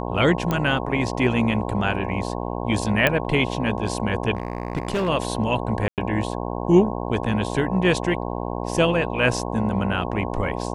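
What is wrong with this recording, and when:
buzz 60 Hz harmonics 18 -28 dBFS
0.51 s: pop -10 dBFS
3.07 s: pop -5 dBFS
4.35–5.09 s: clipped -19.5 dBFS
5.88–5.98 s: dropout 98 ms

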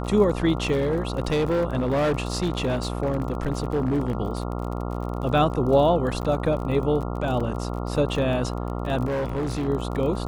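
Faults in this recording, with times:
buzz 60 Hz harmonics 23 -29 dBFS
crackle 34 per s -31 dBFS
0.71–4.18 s: clipped -19 dBFS
6.22–6.23 s: dropout 9.7 ms
7.40 s: dropout 4.9 ms
9.05–9.69 s: clipped -23 dBFS

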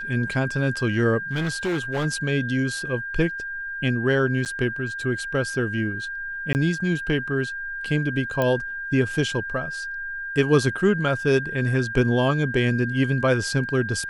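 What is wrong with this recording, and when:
whine 1.6 kHz -29 dBFS
1.31–2.06 s: clipped -21 dBFS
4.45–4.46 s: dropout 8.7 ms
6.53–6.55 s: dropout 19 ms
8.42 s: pop -11 dBFS

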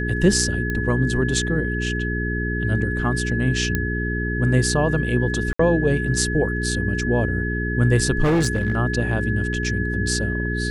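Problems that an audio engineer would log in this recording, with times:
hum 60 Hz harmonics 7 -25 dBFS
whine 1.7 kHz -27 dBFS
0.70 s: pop -14 dBFS
3.75 s: pop -8 dBFS
5.53–5.59 s: dropout 64 ms
8.23–8.77 s: clipped -15 dBFS

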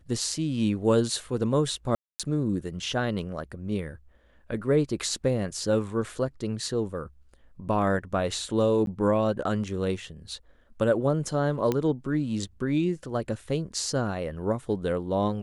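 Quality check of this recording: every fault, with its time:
1.95–2.20 s: dropout 247 ms
8.86–8.87 s: dropout 12 ms
11.72 s: pop -13 dBFS

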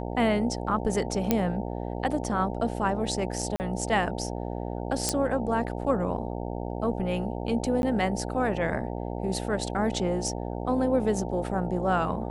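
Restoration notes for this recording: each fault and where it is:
buzz 60 Hz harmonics 15 -33 dBFS
1.31 s: pop -8 dBFS
3.56–3.60 s: dropout 39 ms
5.09 s: pop -9 dBFS
7.82–7.83 s: dropout 11 ms

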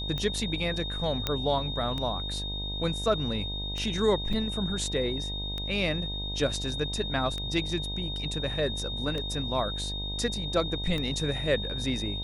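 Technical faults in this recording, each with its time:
buzz 50 Hz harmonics 20 -36 dBFS
tick 33 1/3 rpm -20 dBFS
whine 3.7 kHz -34 dBFS
1.27 s: pop -12 dBFS
4.33 s: dropout 4 ms

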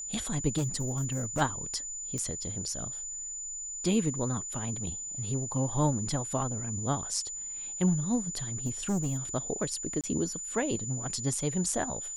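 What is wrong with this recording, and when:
whine 7 kHz -36 dBFS
0.57–1.42 s: clipped -25.5 dBFS
2.18 s: pop -22 dBFS
8.66–9.18 s: clipped -25.5 dBFS
10.01–10.04 s: dropout 27 ms

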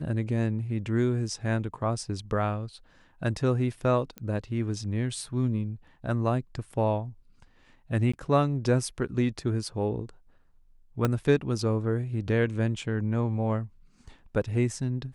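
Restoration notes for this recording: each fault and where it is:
4.18 s: pop -23 dBFS
8.12–8.13 s: dropout 15 ms
11.05 s: pop -12 dBFS

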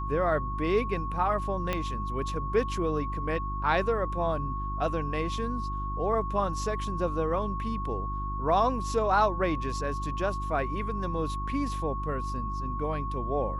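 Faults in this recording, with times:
hum 50 Hz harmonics 7 -34 dBFS
whine 1.1 kHz -34 dBFS
1.73 s: pop -15 dBFS

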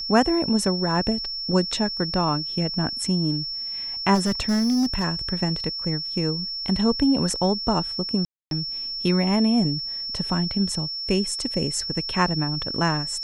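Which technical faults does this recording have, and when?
whine 5.4 kHz -28 dBFS
4.14–5.05 s: clipped -17.5 dBFS
8.25–8.51 s: dropout 262 ms

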